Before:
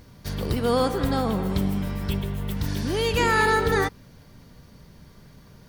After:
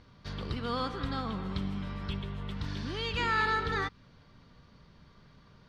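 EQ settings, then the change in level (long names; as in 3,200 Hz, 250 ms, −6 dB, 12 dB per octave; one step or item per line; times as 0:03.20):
parametric band 1,200 Hz +7 dB 0.61 octaves
dynamic equaliser 570 Hz, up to −7 dB, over −34 dBFS, Q 0.77
low-pass with resonance 3,900 Hz, resonance Q 1.5
−9.0 dB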